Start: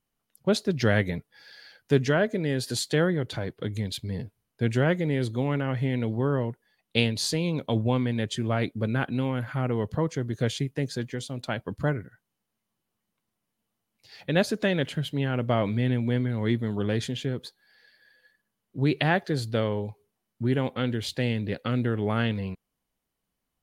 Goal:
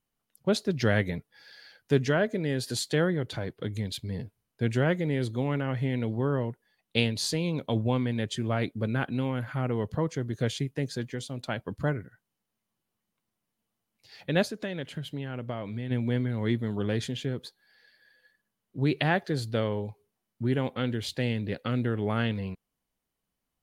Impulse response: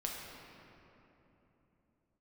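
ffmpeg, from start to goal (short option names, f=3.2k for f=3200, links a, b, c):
-filter_complex "[0:a]asplit=3[a][b][c];[a]afade=t=out:st=14.47:d=0.02[d];[b]acompressor=threshold=-31dB:ratio=3,afade=t=in:st=14.47:d=0.02,afade=t=out:st=15.9:d=0.02[e];[c]afade=t=in:st=15.9:d=0.02[f];[d][e][f]amix=inputs=3:normalize=0,volume=-2dB"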